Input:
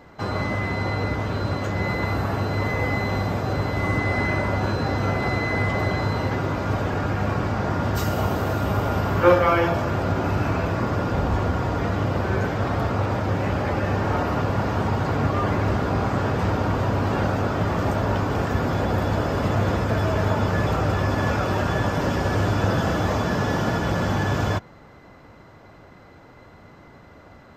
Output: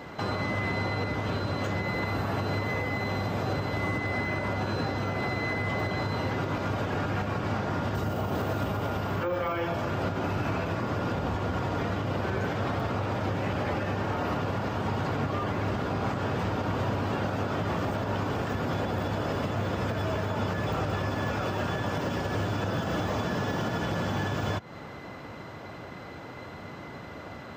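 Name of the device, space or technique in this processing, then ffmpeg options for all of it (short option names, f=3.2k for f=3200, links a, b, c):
broadcast voice chain: -af "highpass=85,deesser=0.95,acompressor=threshold=-29dB:ratio=4,equalizer=f=3.1k:t=o:w=0.81:g=4,alimiter=level_in=2.5dB:limit=-24dB:level=0:latency=1:release=205,volume=-2.5dB,volume=6dB"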